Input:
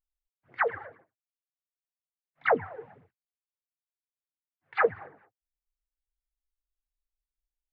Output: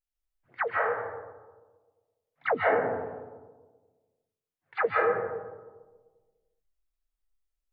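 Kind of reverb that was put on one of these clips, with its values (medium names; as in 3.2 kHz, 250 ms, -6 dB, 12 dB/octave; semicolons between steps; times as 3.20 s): algorithmic reverb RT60 1.4 s, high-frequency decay 0.3×, pre-delay 110 ms, DRR -4.5 dB; trim -3.5 dB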